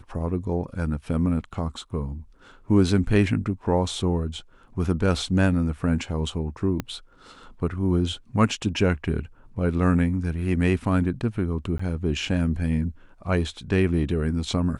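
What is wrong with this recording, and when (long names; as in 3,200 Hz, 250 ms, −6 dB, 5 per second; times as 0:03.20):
0:06.80: click −14 dBFS
0:11.78–0:11.79: drop-out 14 ms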